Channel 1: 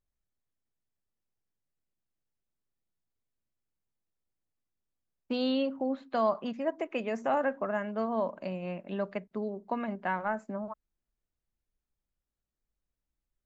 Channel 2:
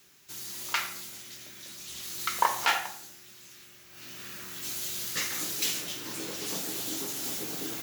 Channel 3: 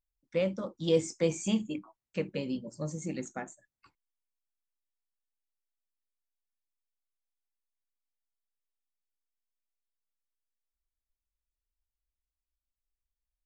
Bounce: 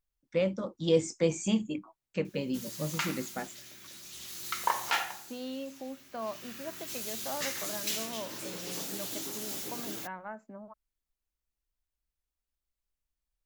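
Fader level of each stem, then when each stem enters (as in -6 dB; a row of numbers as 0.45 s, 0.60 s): -10.0 dB, -4.0 dB, +1.0 dB; 0.00 s, 2.25 s, 0.00 s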